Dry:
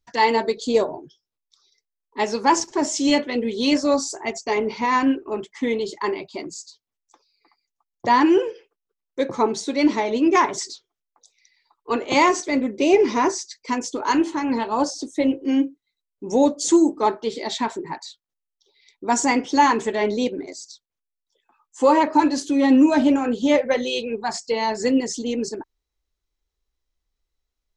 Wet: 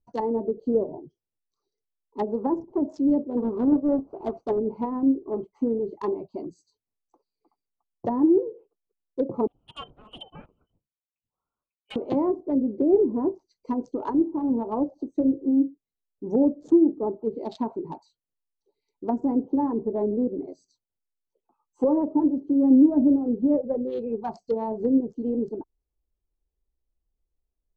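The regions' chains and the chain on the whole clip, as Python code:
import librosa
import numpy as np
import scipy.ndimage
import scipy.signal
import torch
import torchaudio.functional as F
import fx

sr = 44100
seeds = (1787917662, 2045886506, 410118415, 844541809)

y = fx.chain(x, sr, fx.halfwave_hold(),
    fx.lowpass(hz=1500.0, slope=6),
    fx.low_shelf(hz=210.0, db=-11.0), at=(3.37, 4.59))
y = fx.chain(y, sr, fx.freq_invert(carrier_hz=3400),
    fx.upward_expand(threshold_db=-34.0, expansion=1.5), at=(9.47, 11.96))
y = fx.wiener(y, sr, points=25)
y = fx.env_lowpass_down(y, sr, base_hz=460.0, full_db=-18.5)
y = fx.peak_eq(y, sr, hz=2300.0, db=-14.5, octaves=1.6)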